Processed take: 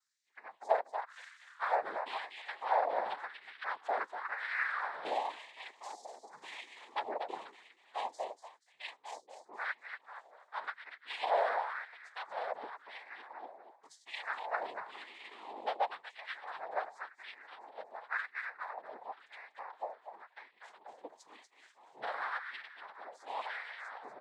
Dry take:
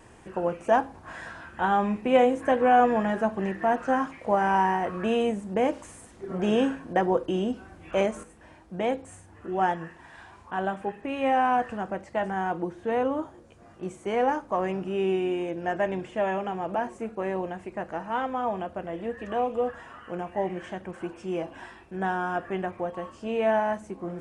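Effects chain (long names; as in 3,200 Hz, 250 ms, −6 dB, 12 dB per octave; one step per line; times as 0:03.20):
spectral dynamics exaggerated over time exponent 2
high-pass filter 310 Hz 6 dB per octave
downward compressor 2.5 to 1, threshold −38 dBFS, peak gain reduction 13 dB
echo with shifted repeats 240 ms, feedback 34%, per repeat +32 Hz, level −7 dB
cochlear-implant simulation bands 6
auto-filter high-pass sine 0.94 Hz 610–2,100 Hz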